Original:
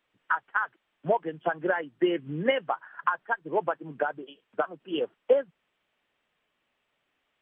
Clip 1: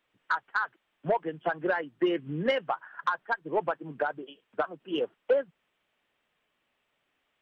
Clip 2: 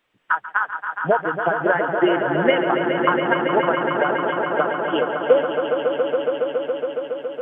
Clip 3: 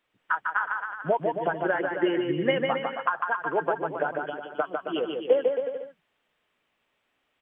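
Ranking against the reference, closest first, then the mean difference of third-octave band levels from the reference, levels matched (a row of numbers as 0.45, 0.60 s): 1, 3, 2; 1.5, 6.0, 9.0 dB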